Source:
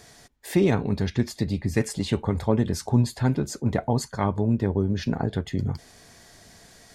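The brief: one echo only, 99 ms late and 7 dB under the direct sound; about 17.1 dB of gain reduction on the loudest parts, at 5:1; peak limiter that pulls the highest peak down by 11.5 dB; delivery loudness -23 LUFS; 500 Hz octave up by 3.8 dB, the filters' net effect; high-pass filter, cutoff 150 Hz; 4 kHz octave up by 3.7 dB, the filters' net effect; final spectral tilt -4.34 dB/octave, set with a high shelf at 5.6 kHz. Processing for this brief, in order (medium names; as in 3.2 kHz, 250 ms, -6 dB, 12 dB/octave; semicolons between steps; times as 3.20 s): high-pass 150 Hz; peaking EQ 500 Hz +5 dB; peaking EQ 4 kHz +3 dB; treble shelf 5.6 kHz +3.5 dB; compression 5:1, threshold -34 dBFS; peak limiter -30 dBFS; delay 99 ms -7 dB; trim +18 dB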